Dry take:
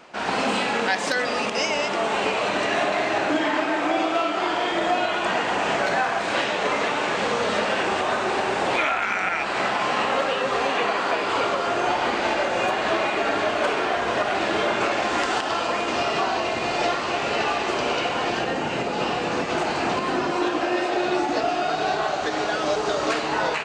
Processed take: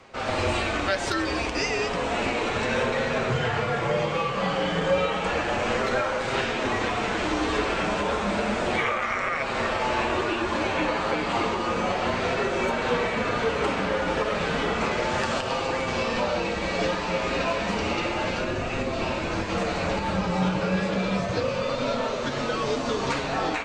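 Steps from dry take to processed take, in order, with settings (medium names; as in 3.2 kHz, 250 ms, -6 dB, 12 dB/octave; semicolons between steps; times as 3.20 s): flange 0.32 Hz, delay 7.1 ms, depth 1.5 ms, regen +46%; frequency shift -170 Hz; trim +1.5 dB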